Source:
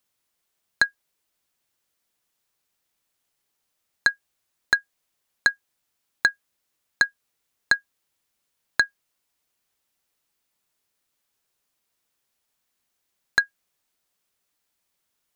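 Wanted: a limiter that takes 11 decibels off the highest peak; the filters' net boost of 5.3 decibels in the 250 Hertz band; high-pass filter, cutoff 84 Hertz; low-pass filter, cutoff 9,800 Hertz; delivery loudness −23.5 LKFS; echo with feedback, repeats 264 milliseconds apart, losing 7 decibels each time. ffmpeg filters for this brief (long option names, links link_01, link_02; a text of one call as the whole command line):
ffmpeg -i in.wav -af "highpass=84,lowpass=9800,equalizer=frequency=250:width_type=o:gain=7,alimiter=limit=-14dB:level=0:latency=1,aecho=1:1:264|528|792|1056|1320:0.447|0.201|0.0905|0.0407|0.0183,volume=11dB" out.wav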